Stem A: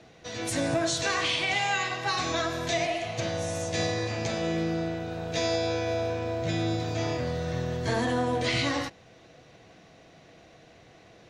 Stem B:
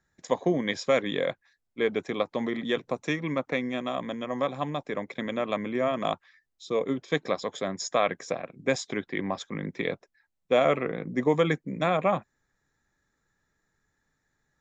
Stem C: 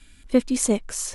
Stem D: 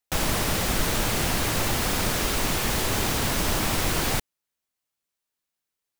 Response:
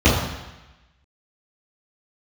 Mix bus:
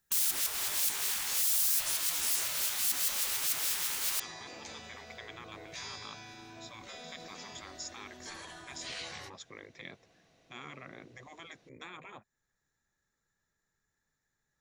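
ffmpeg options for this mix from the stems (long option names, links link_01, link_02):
-filter_complex "[0:a]adelay=400,volume=-14dB[link_01];[1:a]equalizer=frequency=290:width_type=o:width=0.23:gain=-5.5,alimiter=limit=-20dB:level=0:latency=1:release=343,volume=-9dB,asplit=2[link_02][link_03];[2:a]highpass=230,acompressor=threshold=-27dB:ratio=6,adelay=1300,volume=-6dB[link_04];[3:a]lowshelf=frequency=160:gain=-6.5,volume=-2.5dB[link_05];[link_03]apad=whole_len=264396[link_06];[link_05][link_06]sidechaincompress=threshold=-45dB:ratio=10:attack=5.2:release=161[link_07];[link_01][link_02][link_04][link_07]amix=inputs=4:normalize=0,afftfilt=real='re*lt(hypot(re,im),0.0282)':imag='im*lt(hypot(re,im),0.0282)':win_size=1024:overlap=0.75,highshelf=frequency=4600:gain=8.5"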